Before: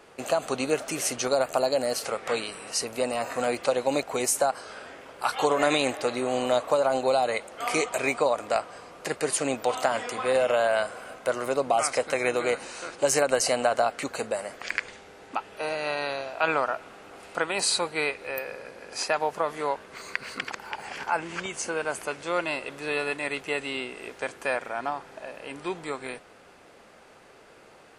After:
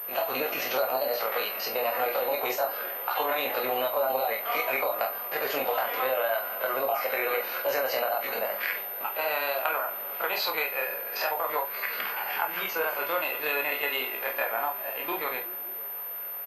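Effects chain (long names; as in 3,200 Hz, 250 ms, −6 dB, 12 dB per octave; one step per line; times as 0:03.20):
spectrum averaged block by block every 50 ms
three-way crossover with the lows and the highs turned down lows −17 dB, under 500 Hz, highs −24 dB, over 4,900 Hz
downward compressor 16 to 1, threshold −31 dBFS, peak gain reduction 11 dB
tape wow and flutter 25 cents
on a send: echo through a band-pass that steps 314 ms, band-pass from 170 Hz, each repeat 0.7 octaves, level −11 dB
on the sum: four-comb reverb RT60 0.35 s, combs from 31 ms, DRR 2 dB
tempo change 1.7×
switching amplifier with a slow clock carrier 13,000 Hz
level +6 dB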